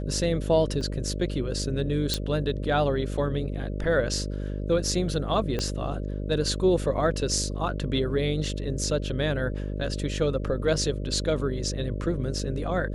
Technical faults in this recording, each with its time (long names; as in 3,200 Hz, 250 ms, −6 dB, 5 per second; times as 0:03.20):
mains buzz 50 Hz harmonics 12 −31 dBFS
0:00.81: drop-out 3.2 ms
0:02.14: click
0:05.59: click −15 dBFS